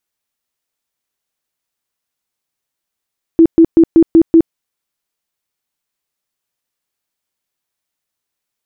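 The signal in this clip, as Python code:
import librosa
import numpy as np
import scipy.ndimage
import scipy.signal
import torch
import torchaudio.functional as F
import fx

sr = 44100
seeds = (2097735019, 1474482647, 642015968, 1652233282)

y = fx.tone_burst(sr, hz=329.0, cycles=22, every_s=0.19, bursts=6, level_db=-2.5)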